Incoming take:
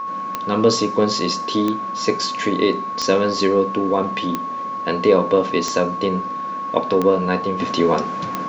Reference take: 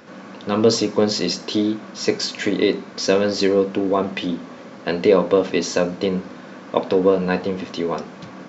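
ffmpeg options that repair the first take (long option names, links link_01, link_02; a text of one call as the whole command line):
ffmpeg -i in.wav -af "adeclick=threshold=4,bandreject=frequency=1100:width=30,asetnsamples=nb_out_samples=441:pad=0,asendcmd='7.6 volume volume -6.5dB',volume=0dB" out.wav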